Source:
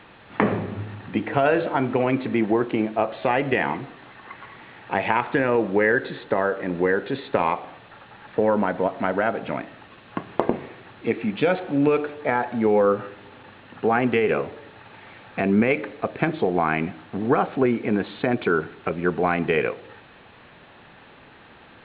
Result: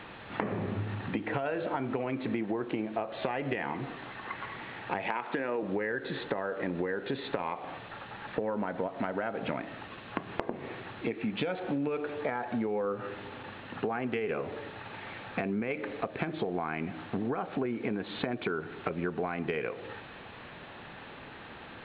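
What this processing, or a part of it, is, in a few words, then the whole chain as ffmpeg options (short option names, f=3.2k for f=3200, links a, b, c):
serial compression, peaks first: -filter_complex "[0:a]asettb=1/sr,asplit=3[a][b][c];[a]atrim=end=5.074[d];[b]atrim=start=5.07:end=5.63,asetpts=PTS-STARTPTS,afade=t=in:d=0.004:c=qsin,afade=t=out:st=0.556:d=0.004:c=qsin,highpass=210[e];[c]atrim=start=5.626[f];[d][e]acrossfade=d=0.004:c1=hsin:c2=qsin[g];[g][f]acrossfade=d=0.004:c1=qsin:c2=hsin,acompressor=threshold=-26dB:ratio=6,acompressor=threshold=-34dB:ratio=2,volume=2dB"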